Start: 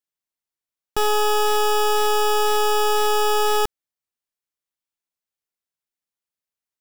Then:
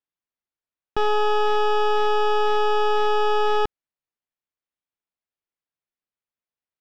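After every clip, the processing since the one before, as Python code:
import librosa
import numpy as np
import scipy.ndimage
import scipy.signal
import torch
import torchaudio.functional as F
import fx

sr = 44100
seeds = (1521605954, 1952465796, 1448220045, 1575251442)

y = fx.air_absorb(x, sr, metres=240.0)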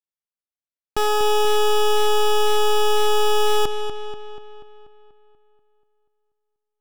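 y = fx.leveller(x, sr, passes=5)
y = fx.echo_filtered(y, sr, ms=242, feedback_pct=57, hz=4900.0, wet_db=-8.0)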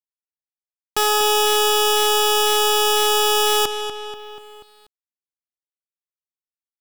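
y = fx.tilt_eq(x, sr, slope=2.5)
y = np.where(np.abs(y) >= 10.0 ** (-47.0 / 20.0), y, 0.0)
y = F.gain(torch.from_numpy(y), 2.5).numpy()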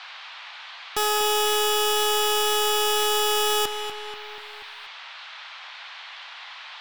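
y = fx.dmg_noise_band(x, sr, seeds[0], low_hz=780.0, high_hz=3900.0, level_db=-36.0)
y = y + 10.0 ** (-23.0 / 20.0) * np.pad(y, (int(260 * sr / 1000.0), 0))[:len(y)]
y = F.gain(torch.from_numpy(y), -5.0).numpy()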